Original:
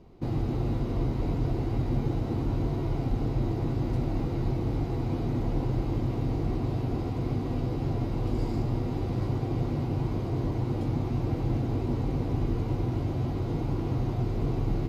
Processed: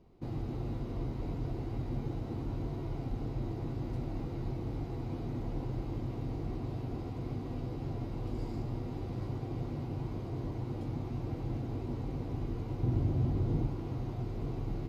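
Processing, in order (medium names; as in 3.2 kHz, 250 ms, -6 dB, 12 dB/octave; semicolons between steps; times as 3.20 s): 12.83–13.68 s: bass shelf 380 Hz +9 dB; trim -8.5 dB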